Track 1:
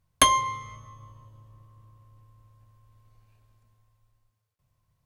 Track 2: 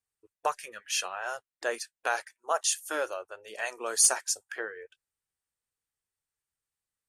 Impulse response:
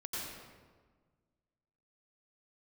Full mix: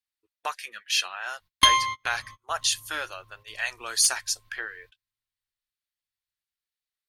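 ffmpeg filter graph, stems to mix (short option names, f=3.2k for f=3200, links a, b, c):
-filter_complex "[0:a]adelay=1400,volume=0.5dB[a];[1:a]agate=range=-6dB:threshold=-47dB:ratio=16:detection=peak,volume=-1dB,asplit=2[b][c];[c]apad=whole_len=284561[d];[a][d]sidechaingate=range=-33dB:threshold=-50dB:ratio=16:detection=peak[e];[e][b]amix=inputs=2:normalize=0,equalizer=f=125:t=o:w=1:g=-7,equalizer=f=500:t=o:w=1:g=-9,equalizer=f=2k:t=o:w=1:g=5,equalizer=f=4k:t=o:w=1:g=11,equalizer=f=8k:t=o:w=1:g=-6,equalizer=f=16k:t=o:w=1:g=7"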